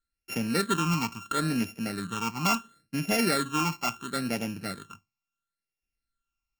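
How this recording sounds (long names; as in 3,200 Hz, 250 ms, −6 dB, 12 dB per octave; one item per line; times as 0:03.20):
a buzz of ramps at a fixed pitch in blocks of 32 samples
phaser sweep stages 8, 0.73 Hz, lowest notch 490–1,200 Hz
AAC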